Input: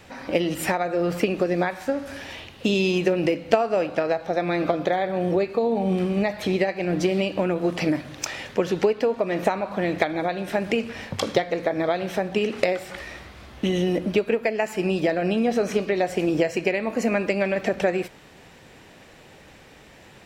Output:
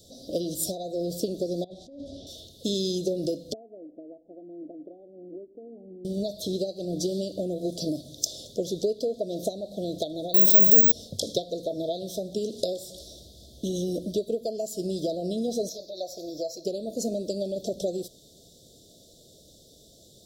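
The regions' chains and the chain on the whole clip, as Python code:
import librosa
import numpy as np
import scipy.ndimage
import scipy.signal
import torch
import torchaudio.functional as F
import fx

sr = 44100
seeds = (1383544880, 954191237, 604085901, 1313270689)

y = fx.chain(x, sr, fx.lowpass(hz=2600.0, slope=12),
    fx.peak_eq(hz=510.0, db=-4.0, octaves=0.42),
    fx.over_compress(threshold_db=-34.0, ratio=-1.0), at=(1.64, 2.27))
y = fx.chain(y, sr, fx.formant_cascade(vowel='u'),
    fx.peak_eq(hz=120.0, db=-12.0, octaves=2.0), at=(3.53, 6.05))
y = fx.chain(y, sr, fx.high_shelf(hz=6100.0, db=4.0),
    fx.resample_bad(factor=2, down='none', up='zero_stuff'),
    fx.env_flatten(amount_pct=70), at=(10.34, 10.92))
y = fx.chain(y, sr, fx.low_shelf_res(hz=280.0, db=-9.0, q=3.0),
    fx.fixed_phaser(hz=2000.0, stages=8), at=(15.69, 16.65))
y = scipy.signal.sosfilt(scipy.signal.cheby1(5, 1.0, [670.0, 3500.0], 'bandstop', fs=sr, output='sos'), y)
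y = fx.high_shelf(y, sr, hz=2700.0, db=11.5)
y = y * librosa.db_to_amplitude(-6.0)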